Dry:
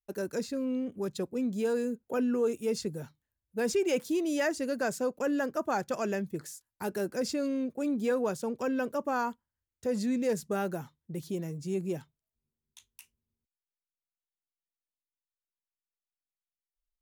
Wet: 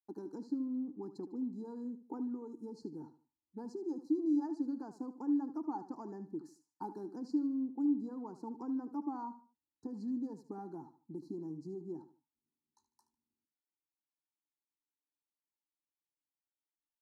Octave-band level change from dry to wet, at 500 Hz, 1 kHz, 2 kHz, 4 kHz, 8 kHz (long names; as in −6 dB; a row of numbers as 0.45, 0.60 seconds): −16.5 dB, −10.0 dB, below −30 dB, below −20 dB, below −25 dB